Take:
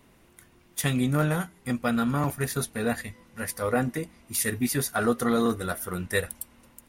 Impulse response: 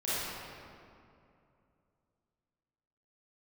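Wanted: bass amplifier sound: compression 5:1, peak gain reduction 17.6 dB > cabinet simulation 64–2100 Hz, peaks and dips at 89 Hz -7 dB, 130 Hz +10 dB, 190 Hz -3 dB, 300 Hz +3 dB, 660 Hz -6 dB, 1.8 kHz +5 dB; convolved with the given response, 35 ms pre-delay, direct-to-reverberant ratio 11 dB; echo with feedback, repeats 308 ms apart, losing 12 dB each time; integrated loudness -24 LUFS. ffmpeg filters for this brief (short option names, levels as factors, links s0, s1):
-filter_complex "[0:a]aecho=1:1:308|616|924:0.251|0.0628|0.0157,asplit=2[s0][s1];[1:a]atrim=start_sample=2205,adelay=35[s2];[s1][s2]afir=irnorm=-1:irlink=0,volume=0.106[s3];[s0][s3]amix=inputs=2:normalize=0,acompressor=threshold=0.0126:ratio=5,highpass=f=64:w=0.5412,highpass=f=64:w=1.3066,equalizer=f=89:t=q:w=4:g=-7,equalizer=f=130:t=q:w=4:g=10,equalizer=f=190:t=q:w=4:g=-3,equalizer=f=300:t=q:w=4:g=3,equalizer=f=660:t=q:w=4:g=-6,equalizer=f=1800:t=q:w=4:g=5,lowpass=f=2100:w=0.5412,lowpass=f=2100:w=1.3066,volume=5.96"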